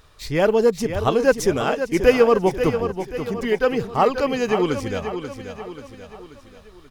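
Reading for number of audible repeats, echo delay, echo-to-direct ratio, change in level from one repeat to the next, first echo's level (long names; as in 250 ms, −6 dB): 4, 535 ms, −8.0 dB, −6.0 dB, −9.0 dB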